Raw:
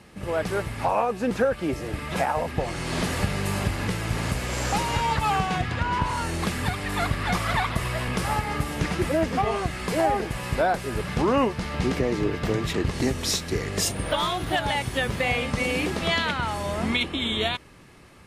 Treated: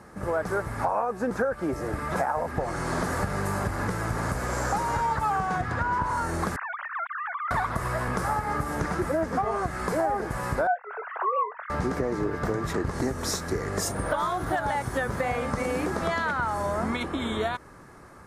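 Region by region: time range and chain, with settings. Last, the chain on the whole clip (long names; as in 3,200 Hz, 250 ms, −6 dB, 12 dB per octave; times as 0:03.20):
0:06.56–0:07.51: three sine waves on the formant tracks + high-pass filter 960 Hz 24 dB per octave + downward compressor 12 to 1, threshold −33 dBFS
0:10.67–0:11.70: three sine waves on the formant tracks + high-pass filter 590 Hz 24 dB per octave + double-tracking delay 24 ms −12 dB
whole clip: drawn EQ curve 180 Hz 0 dB, 1,500 Hz +7 dB, 2,800 Hz −13 dB, 6,200 Hz −1 dB; downward compressor 3 to 1, threshold −25 dBFS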